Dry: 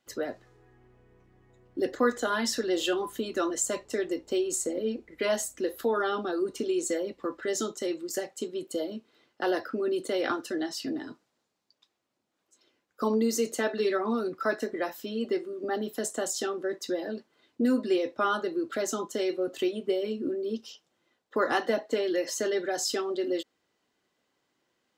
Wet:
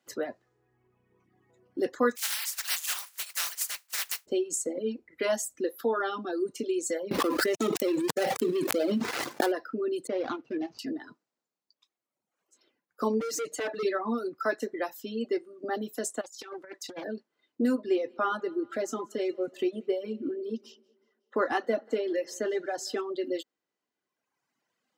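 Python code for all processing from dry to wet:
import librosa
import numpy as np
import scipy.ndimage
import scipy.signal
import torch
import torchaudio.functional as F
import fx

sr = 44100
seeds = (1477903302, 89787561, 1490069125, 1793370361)

y = fx.spec_flatten(x, sr, power=0.15, at=(2.15, 4.25), fade=0.02)
y = fx.highpass(y, sr, hz=1300.0, slope=12, at=(2.15, 4.25), fade=0.02)
y = fx.chain(y, sr, fx.dead_time(dead_ms=0.18),
    fx.env_flatten(amount_pct=100), at=(7.11, 9.52))
y = fx.chain(y, sr, fx.median_filter(points=25),
    fx.lowpass(hz=5600.0, slope=24),
    fx.peak_eq(hz=110.0, db=4.5, octaves=1.4), at=(10.07, 10.79))
y = fx.chain(y, sr, fx.high_shelf(hz=11000.0, db=-12.0),
    fx.comb(ms=6.6, depth=0.97),
    fx.clip_hard(threshold_db=-27.5), at=(13.2, 13.83))
y = fx.chain(y, sr, fx.highpass(hz=860.0, slope=6),
    fx.over_compress(threshold_db=-39.0, ratio=-0.5),
    fx.doppler_dist(depth_ms=0.34), at=(16.21, 17.04))
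y = fx.chain(y, sr, fx.high_shelf(hz=3600.0, db=-9.0),
    fx.echo_split(split_hz=430.0, low_ms=127, high_ms=185, feedback_pct=52, wet_db=-15.5), at=(17.75, 23.01))
y = fx.dereverb_blind(y, sr, rt60_s=1.6)
y = scipy.signal.sosfilt(scipy.signal.butter(2, 140.0, 'highpass', fs=sr, output='sos'), y)
y = fx.peak_eq(y, sr, hz=3500.0, db=-3.0, octaves=0.6)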